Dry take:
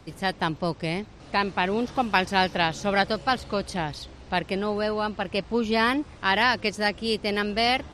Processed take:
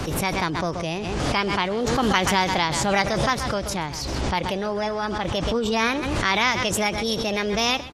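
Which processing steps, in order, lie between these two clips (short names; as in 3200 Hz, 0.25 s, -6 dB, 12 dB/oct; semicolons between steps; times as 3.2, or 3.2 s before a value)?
formant shift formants +3 st; echo 0.129 s -17 dB; backwards sustainer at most 23 dB/s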